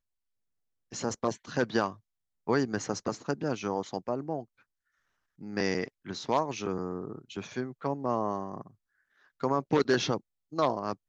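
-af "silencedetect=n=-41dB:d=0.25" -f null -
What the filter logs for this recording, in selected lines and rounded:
silence_start: 0.00
silence_end: 0.92 | silence_duration: 0.92
silence_start: 1.93
silence_end: 2.48 | silence_duration: 0.55
silence_start: 4.43
silence_end: 5.41 | silence_duration: 0.98
silence_start: 8.67
silence_end: 9.41 | silence_duration: 0.74
silence_start: 10.18
silence_end: 10.52 | silence_duration: 0.35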